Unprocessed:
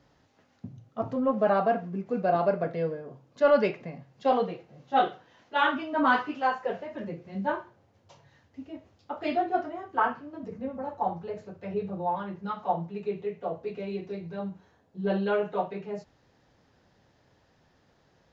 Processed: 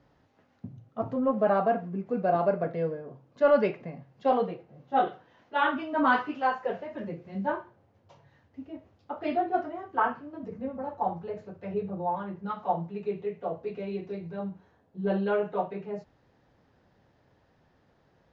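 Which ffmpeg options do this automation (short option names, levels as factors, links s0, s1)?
-af "asetnsamples=n=441:p=0,asendcmd='4.54 lowpass f 1300;5.07 lowpass f 2100;5.78 lowpass f 3700;7.46 lowpass f 2000;9.53 lowpass f 2900;11.8 lowpass f 1800;12.5 lowpass f 3300;14.31 lowpass f 2200',lowpass=f=2200:p=1"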